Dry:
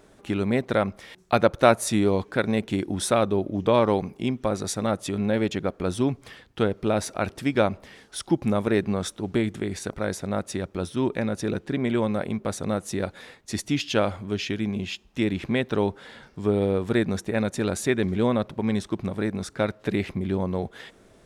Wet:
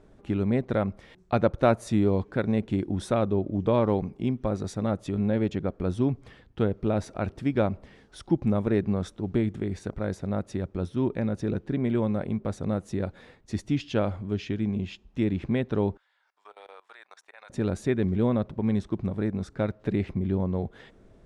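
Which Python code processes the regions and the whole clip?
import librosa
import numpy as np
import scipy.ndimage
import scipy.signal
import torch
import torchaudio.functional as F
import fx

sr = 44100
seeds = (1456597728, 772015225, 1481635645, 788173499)

y = fx.chain(x, sr, fx.highpass(hz=880.0, slope=24),
    fx.level_steps(step_db=21), at=(15.97, 17.5))
y = scipy.signal.sosfilt(scipy.signal.butter(2, 10000.0, 'lowpass', fs=sr, output='sos'), y)
y = fx.tilt_eq(y, sr, slope=-2.5)
y = y * 10.0 ** (-6.0 / 20.0)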